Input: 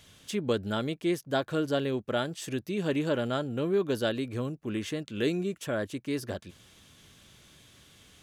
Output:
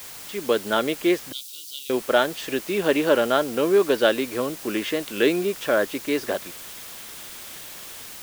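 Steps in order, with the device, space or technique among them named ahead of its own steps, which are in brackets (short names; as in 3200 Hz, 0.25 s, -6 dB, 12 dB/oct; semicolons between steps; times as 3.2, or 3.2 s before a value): dictaphone (BPF 380–3500 Hz; AGC gain up to 12 dB; wow and flutter 27 cents; white noise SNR 16 dB); 1.32–1.9 inverse Chebyshev high-pass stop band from 1800 Hz, stop band 40 dB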